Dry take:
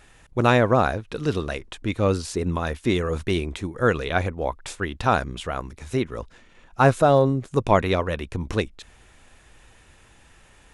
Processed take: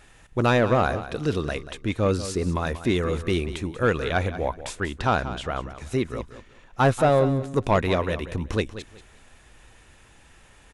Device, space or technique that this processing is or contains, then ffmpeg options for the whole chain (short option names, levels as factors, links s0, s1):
saturation between pre-emphasis and de-emphasis: -filter_complex "[0:a]highshelf=f=8400:g=9.5,asoftclip=type=tanh:threshold=0.282,highshelf=f=8400:g=-9.5,asettb=1/sr,asplit=3[s0][s1][s2];[s0]atrim=end=4.944[s3];[s1]atrim=start=4.94:end=5.79,asetpts=PTS-STARTPTS,afade=t=in:d=0.004:c=qsin,afade=t=out:st=0.846:d=0.004:c=qsin,lowpass=7300[s4];[s2]atrim=start=5.786[s5];[s3][s4]acrossfade=d=0.004:c1=hsin:c2=qsin[s6];[s6][s5]acrossfade=d=0.004:c1=qsin:c2=hsin,aecho=1:1:186|372|558:0.224|0.0515|0.0118"